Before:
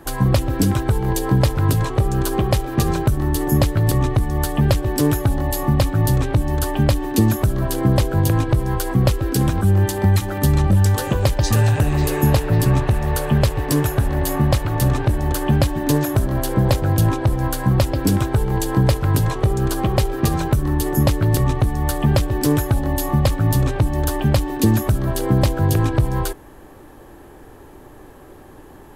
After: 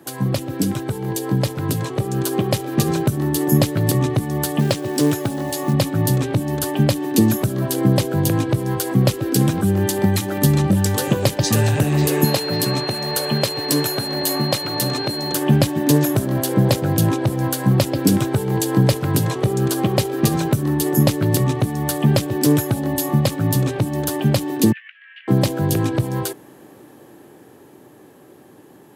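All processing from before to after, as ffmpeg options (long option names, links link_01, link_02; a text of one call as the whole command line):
ffmpeg -i in.wav -filter_complex "[0:a]asettb=1/sr,asplit=3[link_01][link_02][link_03];[link_01]atrim=end=4.594[link_04];[link_02]atrim=start=4.59:end=5.73,asetpts=PTS-STARTPTS,afade=type=in:duration=0.004:curve=qsin,afade=type=out:start_time=1.136:duration=0.004:curve=qsin,lowpass=9400,lowshelf=frequency=130:gain=-9,acrusher=bits=6:mode=log:mix=0:aa=0.000001[link_05];[link_03]atrim=start=5.726[link_06];[link_04][link_05]acrossfade=duration=0.004:curve1=hsin:curve2=qsin[link_07];[link_07][link_06]acrossfade=duration=0.004:curve1=qsin:curve2=hsin,asettb=1/sr,asplit=3[link_08][link_09][link_10];[link_08]atrim=end=12.244[link_11];[link_09]atrim=start=12.24:end=15.34,asetpts=PTS-STARTPTS,afade=type=in:duration=0.004:curve=qsin,afade=type=out:start_time=3.096:duration=0.004:curve=qsin,highpass=frequency=360:poles=1,aeval=exprs='val(0)+0.0316*sin(2*PI*4200*n/s)':channel_layout=same[link_12];[link_10]atrim=start=15.336[link_13];[link_11][link_12]acrossfade=duration=0.004:curve1=hsin:curve2=qsin[link_14];[link_14][link_13]acrossfade=duration=0.004:curve1=qsin:curve2=hsin,asettb=1/sr,asplit=3[link_15][link_16][link_17];[link_15]atrim=end=24.724[link_18];[link_16]atrim=start=24.72:end=25.28,asetpts=PTS-STARTPTS,afade=type=in:duration=0.004:curve=qsin,afade=type=out:start_time=0.556:duration=0.004:curve=qsin,asuperpass=centerf=2200:order=8:qfactor=1.7,asplit=2[link_19][link_20];[link_20]adelay=17,volume=-14dB[link_21];[link_19][link_21]amix=inputs=2:normalize=0,atrim=end_sample=24696[link_22];[link_17]atrim=start=25.276[link_23];[link_18][link_22]acrossfade=duration=0.004:curve1=hsin:curve2=qsin[link_24];[link_24][link_23]acrossfade=duration=0.004:curve1=qsin:curve2=hsin,highpass=frequency=130:width=0.5412,highpass=frequency=130:width=1.3066,equalizer=frequency=1100:width_type=o:width=1.8:gain=-6,dynaudnorm=framelen=210:gausssize=21:maxgain=11.5dB,volume=-1dB" out.wav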